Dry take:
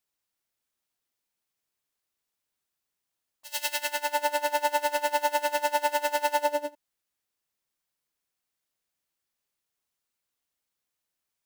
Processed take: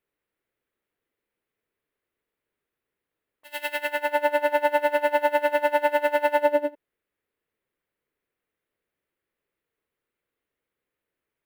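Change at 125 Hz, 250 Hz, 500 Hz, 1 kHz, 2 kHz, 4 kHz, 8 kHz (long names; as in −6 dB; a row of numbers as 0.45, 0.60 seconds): can't be measured, +9.0 dB, +7.5 dB, +2.0 dB, +4.5 dB, −4.0 dB, below −10 dB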